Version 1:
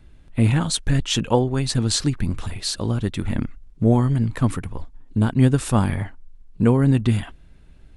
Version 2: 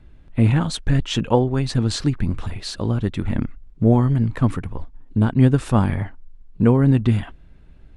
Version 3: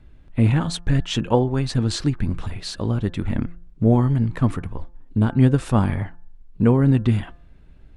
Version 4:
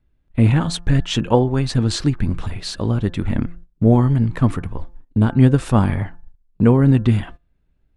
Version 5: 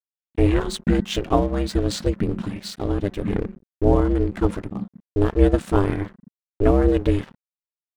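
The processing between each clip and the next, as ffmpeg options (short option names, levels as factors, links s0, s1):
-af "lowpass=f=2500:p=1,volume=1.19"
-af "bandreject=f=173:t=h:w=4,bandreject=f=346:t=h:w=4,bandreject=f=519:t=h:w=4,bandreject=f=692:t=h:w=4,bandreject=f=865:t=h:w=4,bandreject=f=1038:t=h:w=4,bandreject=f=1211:t=h:w=4,bandreject=f=1384:t=h:w=4,bandreject=f=1557:t=h:w=4,bandreject=f=1730:t=h:w=4,volume=0.891"
-af "agate=range=0.112:threshold=0.0141:ratio=16:detection=peak,volume=1.41"
-af "aeval=exprs='sgn(val(0))*max(abs(val(0))-0.015,0)':c=same,aeval=exprs='val(0)*sin(2*PI*200*n/s)':c=same"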